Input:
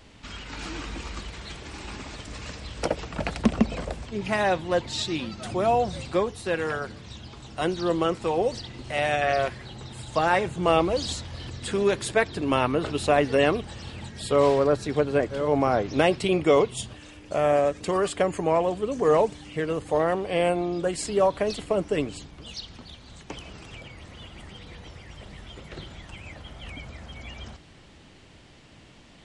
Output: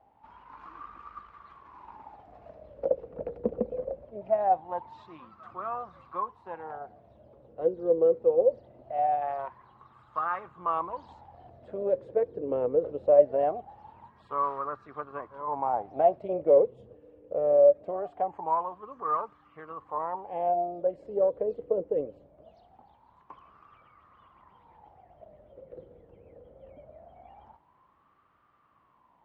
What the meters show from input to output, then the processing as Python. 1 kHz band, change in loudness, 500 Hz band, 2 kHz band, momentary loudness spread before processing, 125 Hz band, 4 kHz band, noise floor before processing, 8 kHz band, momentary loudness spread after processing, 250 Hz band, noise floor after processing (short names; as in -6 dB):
-2.5 dB, -3.0 dB, -2.5 dB, -19.5 dB, 20 LU, -18.0 dB, under -30 dB, -51 dBFS, under -40 dB, 19 LU, -13.5 dB, -65 dBFS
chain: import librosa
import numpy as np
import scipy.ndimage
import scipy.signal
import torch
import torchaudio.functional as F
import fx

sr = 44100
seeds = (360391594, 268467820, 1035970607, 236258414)

y = fx.riaa(x, sr, side='playback')
y = fx.cheby_harmonics(y, sr, harmonics=(8,), levels_db=(-28,), full_scale_db=2.5)
y = fx.wah_lfo(y, sr, hz=0.22, low_hz=480.0, high_hz=1200.0, q=12.0)
y = y * 10.0 ** (5.5 / 20.0)